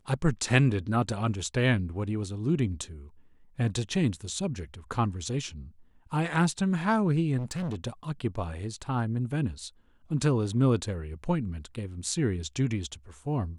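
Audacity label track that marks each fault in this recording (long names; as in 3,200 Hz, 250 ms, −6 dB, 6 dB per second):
7.370000	7.760000	clipping −29 dBFS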